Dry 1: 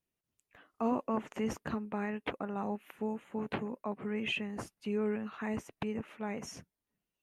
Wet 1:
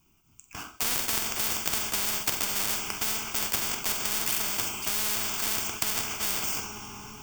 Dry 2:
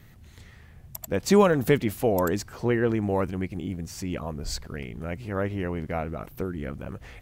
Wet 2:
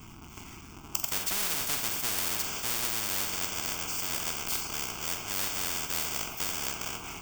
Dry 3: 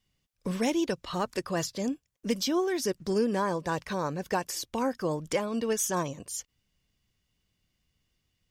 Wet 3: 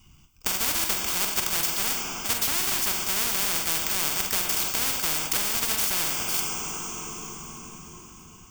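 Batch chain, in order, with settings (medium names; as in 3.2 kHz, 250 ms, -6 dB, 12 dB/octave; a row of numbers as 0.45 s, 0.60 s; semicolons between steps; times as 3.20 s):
square wave that keeps the level; treble shelf 8 kHz +6 dB; in parallel at -5 dB: bit crusher 4-bit; on the sum: static phaser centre 2.7 kHz, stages 8; on a send: flutter echo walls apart 7.8 m, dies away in 0.24 s; on the sum: two-slope reverb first 0.5 s, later 4.9 s, from -18 dB, DRR 8 dB; spectrum-flattening compressor 10:1; peak normalisation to -6 dBFS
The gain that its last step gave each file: +5.0 dB, -3.5 dB, +2.0 dB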